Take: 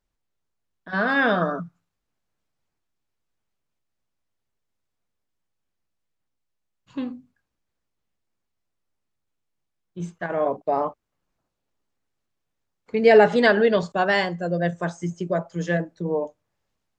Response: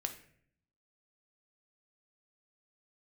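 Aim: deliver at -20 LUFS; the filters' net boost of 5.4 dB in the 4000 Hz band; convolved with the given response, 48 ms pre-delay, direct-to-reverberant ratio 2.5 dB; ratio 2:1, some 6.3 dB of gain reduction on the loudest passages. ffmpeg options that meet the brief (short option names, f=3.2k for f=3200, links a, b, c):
-filter_complex "[0:a]equalizer=f=4k:t=o:g=7,acompressor=threshold=-21dB:ratio=2,asplit=2[a][b];[1:a]atrim=start_sample=2205,adelay=48[c];[b][c]afir=irnorm=-1:irlink=0,volume=-2.5dB[d];[a][d]amix=inputs=2:normalize=0,volume=3.5dB"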